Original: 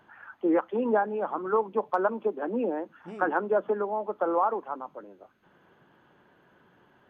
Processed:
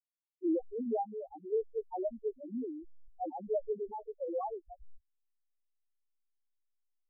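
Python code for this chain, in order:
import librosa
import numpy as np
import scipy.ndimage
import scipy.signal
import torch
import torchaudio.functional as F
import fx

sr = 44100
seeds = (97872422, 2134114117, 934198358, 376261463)

y = fx.backlash(x, sr, play_db=-26.0)
y = fx.spec_topn(y, sr, count=1)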